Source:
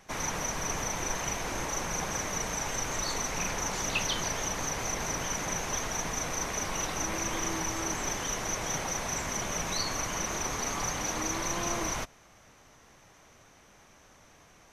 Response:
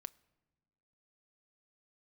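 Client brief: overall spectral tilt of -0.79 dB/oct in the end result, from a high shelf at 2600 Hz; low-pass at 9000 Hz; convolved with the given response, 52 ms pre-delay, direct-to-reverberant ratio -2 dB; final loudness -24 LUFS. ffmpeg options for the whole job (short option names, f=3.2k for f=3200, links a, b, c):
-filter_complex "[0:a]lowpass=9k,highshelf=f=2.6k:g=8.5,asplit=2[a][b];[1:a]atrim=start_sample=2205,adelay=52[c];[b][c]afir=irnorm=-1:irlink=0,volume=7dB[d];[a][d]amix=inputs=2:normalize=0,volume=-1.5dB"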